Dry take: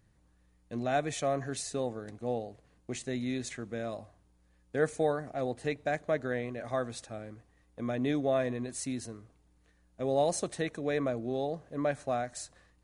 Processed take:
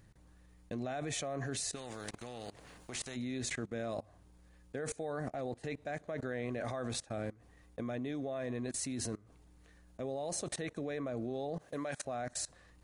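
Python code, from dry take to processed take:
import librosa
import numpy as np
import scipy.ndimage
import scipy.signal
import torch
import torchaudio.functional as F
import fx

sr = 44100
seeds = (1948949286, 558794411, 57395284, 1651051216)

y = fx.tilt_eq(x, sr, slope=2.5, at=(11.59, 12.05))
y = fx.level_steps(y, sr, step_db=23)
y = fx.spectral_comp(y, sr, ratio=2.0, at=(1.74, 3.15), fade=0.02)
y = y * librosa.db_to_amplitude(8.0)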